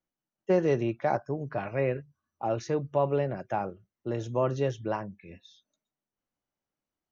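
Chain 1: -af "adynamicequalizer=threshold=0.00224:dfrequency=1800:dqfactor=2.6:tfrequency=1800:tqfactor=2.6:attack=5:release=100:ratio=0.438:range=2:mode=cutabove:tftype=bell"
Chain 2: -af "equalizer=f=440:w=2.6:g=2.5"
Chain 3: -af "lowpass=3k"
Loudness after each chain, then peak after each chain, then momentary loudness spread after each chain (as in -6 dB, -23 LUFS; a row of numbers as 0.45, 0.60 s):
-30.0, -29.0, -30.0 LUFS; -14.0, -13.5, -14.0 dBFS; 12, 12, 12 LU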